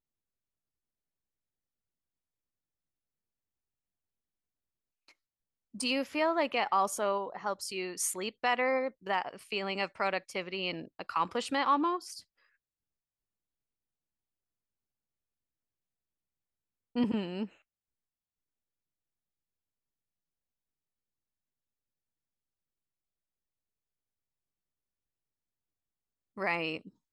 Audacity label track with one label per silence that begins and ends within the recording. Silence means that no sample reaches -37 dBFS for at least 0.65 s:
12.180000	16.960000	silence
17.450000	26.380000	silence